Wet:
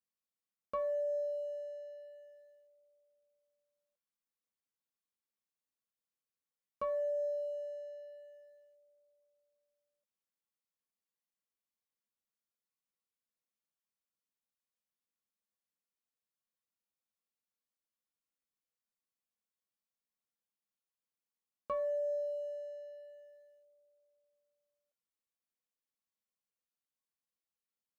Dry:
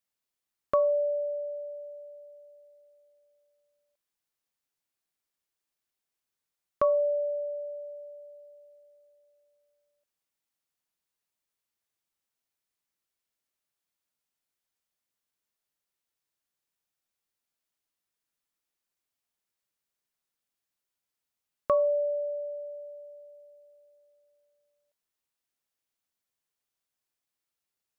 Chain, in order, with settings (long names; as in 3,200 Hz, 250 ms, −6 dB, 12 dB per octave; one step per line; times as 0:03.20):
leveller curve on the samples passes 1
tuned comb filter 280 Hz, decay 0.46 s, harmonics odd, mix 70%
brickwall limiter −33 dBFS, peak gain reduction 9 dB
hollow resonant body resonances 210/500/1,100 Hz, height 12 dB, ringing for 100 ms